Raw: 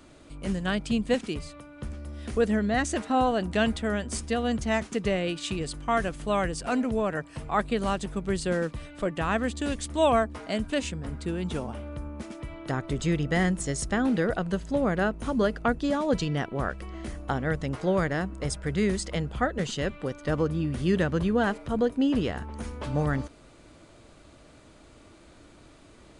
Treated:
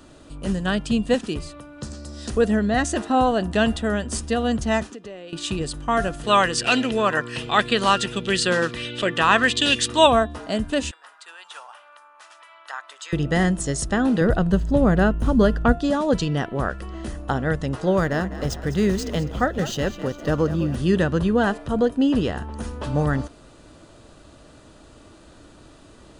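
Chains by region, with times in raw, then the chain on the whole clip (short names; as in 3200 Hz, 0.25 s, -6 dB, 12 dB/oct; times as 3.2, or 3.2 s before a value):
1.81–2.3 HPF 87 Hz + band shelf 5800 Hz +13 dB 1.3 oct
4.9–5.33 LPF 8000 Hz + resonant low shelf 190 Hz -10.5 dB, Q 1.5 + compressor 3:1, threshold -44 dBFS
6.23–10.06 weighting filter D + buzz 120 Hz, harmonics 4, -41 dBFS -1 dB/oct + LFO bell 1.4 Hz 1000–3400 Hz +9 dB
10.91–13.13 HPF 970 Hz 24 dB/oct + high shelf 3500 Hz -6.5 dB
14.21–15.73 median filter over 3 samples + low shelf 160 Hz +12 dB + mismatched tape noise reduction decoder only
17.91–20.75 median filter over 5 samples + bell 6100 Hz +6 dB 0.29 oct + frequency-shifting echo 0.203 s, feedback 47%, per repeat +46 Hz, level -13.5 dB
whole clip: notch 2200 Hz, Q 5.4; de-hum 348.5 Hz, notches 11; gain +5 dB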